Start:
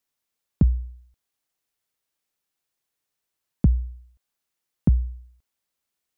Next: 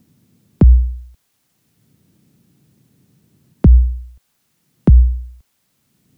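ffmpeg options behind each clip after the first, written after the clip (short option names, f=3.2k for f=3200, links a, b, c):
-filter_complex "[0:a]acrossover=split=110|210|510[a][b][c][d];[b]acompressor=mode=upward:threshold=-44dB:ratio=2.5[e];[a][e][c][d]amix=inputs=4:normalize=0,alimiter=level_in=17dB:limit=-1dB:release=50:level=0:latency=1,volume=-1dB"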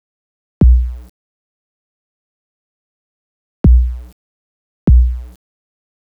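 -af "aeval=exprs='val(0)*gte(abs(val(0)),0.0133)':c=same"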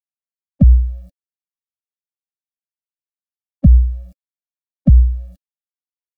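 -af "lowshelf=f=680:t=q:w=3:g=9.5,afftfilt=real='re*eq(mod(floor(b*sr/1024/270),2),0)':imag='im*eq(mod(floor(b*sr/1024/270),2),0)':win_size=1024:overlap=0.75,volume=-10dB"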